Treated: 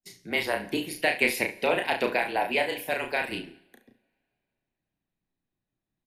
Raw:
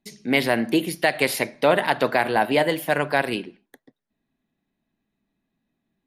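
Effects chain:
low-shelf EQ 62 Hz +7.5 dB
harmonic and percussive parts rebalanced harmonic −16 dB
0:00.91–0:03.30: thirty-one-band graphic EQ 125 Hz −7 dB, 1,250 Hz −6 dB, 2,500 Hz +9 dB
frequency shifter −26 Hz
ambience of single reflections 33 ms −4.5 dB, 70 ms −13 dB
coupled-rooms reverb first 0.76 s, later 3 s, from −27 dB, DRR 13.5 dB
level −5.5 dB

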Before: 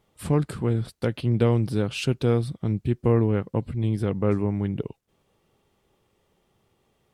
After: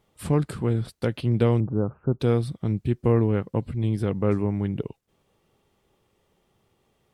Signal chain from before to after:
0:01.60–0:02.20: Butterworth low-pass 1,300 Hz 48 dB per octave

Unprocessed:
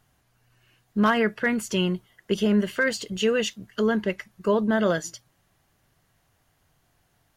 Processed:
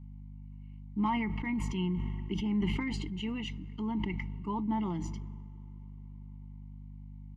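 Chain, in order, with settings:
formant filter u
mains hum 50 Hz, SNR 11 dB
parametric band 170 Hz +11 dB 0.28 octaves
comb filter 1 ms, depth 59%
on a send at −24 dB: convolution reverb RT60 5.2 s, pre-delay 55 ms
on the sum: level that may fall only so fast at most 24 dB per second
level +1 dB

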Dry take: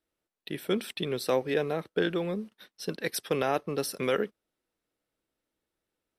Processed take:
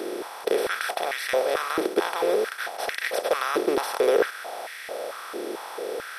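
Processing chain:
compressor on every frequency bin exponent 0.2
high-pass on a step sequencer 4.5 Hz 350–1,900 Hz
level −7 dB

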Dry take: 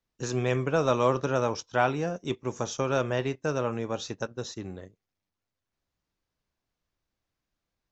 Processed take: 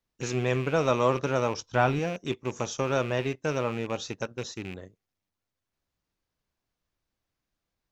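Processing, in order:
loose part that buzzes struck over −39 dBFS, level −30 dBFS
0:01.57–0:01.99: low-shelf EQ 150 Hz +10.5 dB

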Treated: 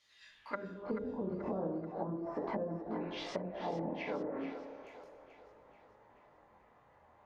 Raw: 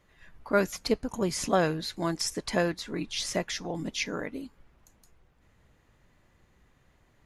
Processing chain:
low-shelf EQ 110 Hz +11.5 dB
coupled-rooms reverb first 0.72 s, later 2.7 s, DRR 0.5 dB
chorus effect 0.35 Hz, delay 18.5 ms, depth 7.1 ms
band-pass filter sweep 4,400 Hz → 820 Hz, 0:00.29–0:00.98
dynamic equaliser 710 Hz, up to −6 dB, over −48 dBFS, Q 2.5
treble cut that deepens with the level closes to 300 Hz, closed at −39 dBFS
downward compressor, threshold −44 dBFS, peak gain reduction 5.5 dB
echo with a time of its own for lows and highs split 390 Hz, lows 98 ms, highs 434 ms, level −11 dB
level +11 dB

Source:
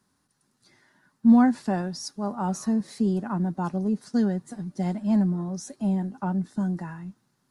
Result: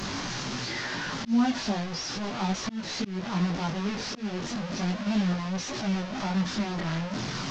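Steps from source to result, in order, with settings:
linear delta modulator 32 kbit/s, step −23.5 dBFS
multi-voice chorus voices 2, 0.36 Hz, delay 20 ms, depth 4.6 ms
volume swells 238 ms

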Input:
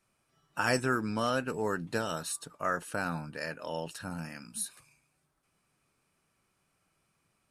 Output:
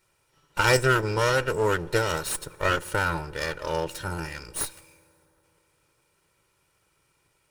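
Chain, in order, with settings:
lower of the sound and its delayed copy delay 2.1 ms
on a send: convolution reverb RT60 3.6 s, pre-delay 3 ms, DRR 22 dB
on the sum: level +8 dB

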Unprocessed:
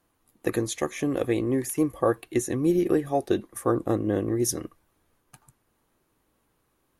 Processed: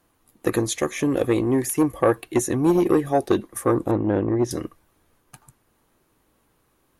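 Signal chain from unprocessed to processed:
0:03.91–0:04.51: low-pass filter 2,600 Hz 12 dB per octave
saturating transformer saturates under 630 Hz
level +5.5 dB

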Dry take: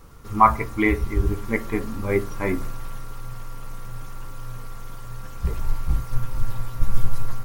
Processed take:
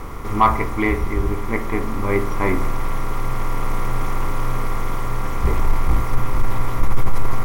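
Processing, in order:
compressor on every frequency bin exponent 0.6
speech leveller within 4 dB 2 s
soft clipping −3.5 dBFS, distortion −19 dB

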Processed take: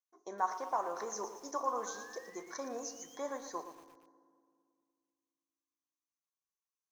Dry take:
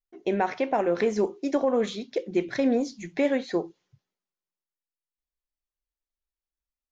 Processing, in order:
sound drawn into the spectrogram rise, 0:01.86–0:03.23, 1,500–3,400 Hz −39 dBFS
pair of resonant band-passes 2,600 Hz, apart 2.5 octaves
convolution reverb RT60 2.2 s, pre-delay 3 ms, DRR 13 dB
feedback echo at a low word length 115 ms, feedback 55%, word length 10 bits, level −10.5 dB
level +5 dB

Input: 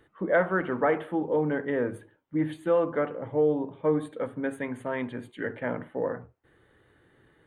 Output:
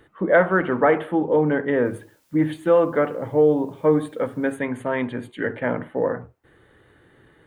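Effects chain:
0:01.85–0:04.52: bit-depth reduction 12 bits, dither triangular
level +7 dB

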